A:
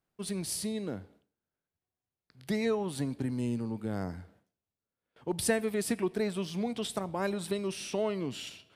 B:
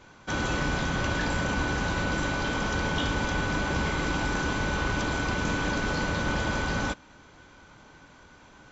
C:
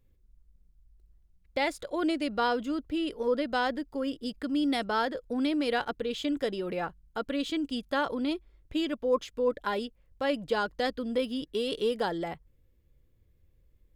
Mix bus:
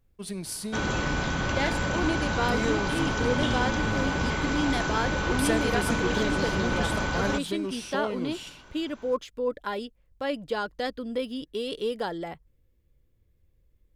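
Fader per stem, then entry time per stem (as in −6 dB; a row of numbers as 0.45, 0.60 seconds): 0.0, 0.0, −1.0 decibels; 0.00, 0.45, 0.00 seconds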